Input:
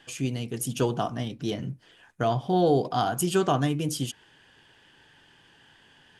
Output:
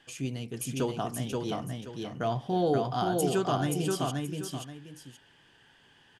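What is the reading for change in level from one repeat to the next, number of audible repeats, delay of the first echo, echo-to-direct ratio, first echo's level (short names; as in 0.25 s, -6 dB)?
-11.0 dB, 2, 0.528 s, -2.5 dB, -3.0 dB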